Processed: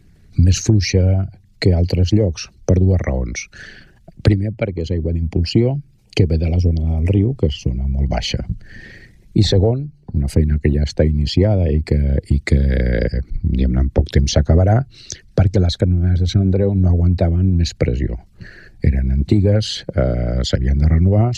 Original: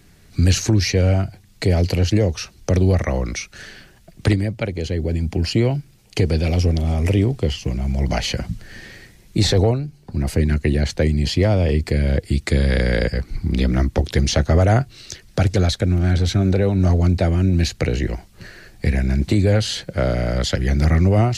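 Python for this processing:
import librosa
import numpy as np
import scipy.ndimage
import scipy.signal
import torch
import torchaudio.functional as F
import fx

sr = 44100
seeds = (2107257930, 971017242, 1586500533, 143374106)

y = fx.envelope_sharpen(x, sr, power=1.5)
y = fx.transient(y, sr, attack_db=4, sustain_db=-1)
y = y * librosa.db_to_amplitude(1.5)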